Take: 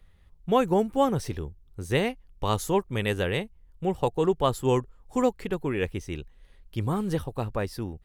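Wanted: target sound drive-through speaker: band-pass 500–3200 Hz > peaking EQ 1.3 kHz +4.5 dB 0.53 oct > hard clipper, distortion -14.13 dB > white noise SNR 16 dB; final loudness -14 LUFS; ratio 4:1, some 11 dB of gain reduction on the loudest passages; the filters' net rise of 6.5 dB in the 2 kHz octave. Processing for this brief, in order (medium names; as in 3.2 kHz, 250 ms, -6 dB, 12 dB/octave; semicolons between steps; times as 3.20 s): peaking EQ 2 kHz +7.5 dB; compression 4:1, threshold -31 dBFS; band-pass 500–3200 Hz; peaking EQ 1.3 kHz +4.5 dB 0.53 oct; hard clipper -28.5 dBFS; white noise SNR 16 dB; trim +25.5 dB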